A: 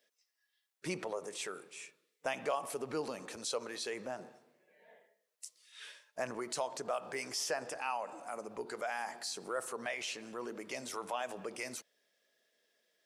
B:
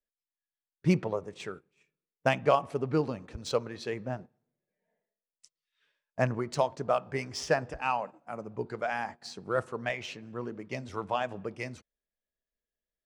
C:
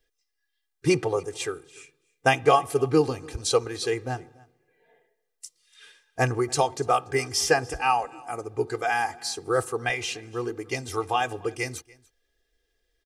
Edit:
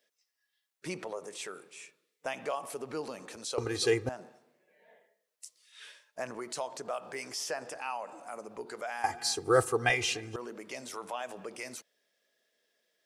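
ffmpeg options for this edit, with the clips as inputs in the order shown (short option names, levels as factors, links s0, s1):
-filter_complex "[2:a]asplit=2[s0][s1];[0:a]asplit=3[s2][s3][s4];[s2]atrim=end=3.582[s5];[s0]atrim=start=3.578:end=4.092[s6];[s3]atrim=start=4.088:end=9.042[s7];[s1]atrim=start=9.038:end=10.362[s8];[s4]atrim=start=10.358[s9];[s5][s6]acrossfade=d=0.004:c1=hsin:c2=hsin[s10];[s10][s7]acrossfade=d=0.004:c1=hsin:c2=hsin[s11];[s11][s8]acrossfade=d=0.004:c1=hsin:c2=hsin[s12];[s12][s9]acrossfade=d=0.004:c1=hsin:c2=hsin"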